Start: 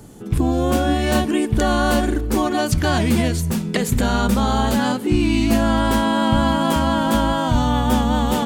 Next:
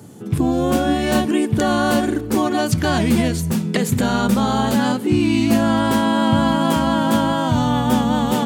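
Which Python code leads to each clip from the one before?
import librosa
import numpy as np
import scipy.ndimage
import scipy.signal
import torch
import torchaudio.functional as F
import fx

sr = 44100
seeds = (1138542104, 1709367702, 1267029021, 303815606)

y = scipy.signal.sosfilt(scipy.signal.butter(4, 99.0, 'highpass', fs=sr, output='sos'), x)
y = fx.low_shelf(y, sr, hz=230.0, db=4.0)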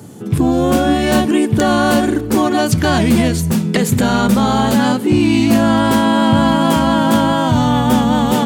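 y = 10.0 ** (-7.0 / 20.0) * np.tanh(x / 10.0 ** (-7.0 / 20.0))
y = y * librosa.db_to_amplitude(5.0)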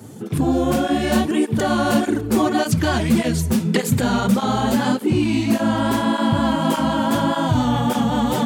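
y = fx.rider(x, sr, range_db=3, speed_s=0.5)
y = fx.flanger_cancel(y, sr, hz=1.7, depth_ms=7.2)
y = y * librosa.db_to_amplitude(-2.5)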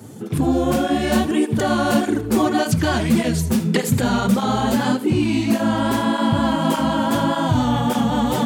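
y = x + 10.0 ** (-16.5 / 20.0) * np.pad(x, (int(79 * sr / 1000.0), 0))[:len(x)]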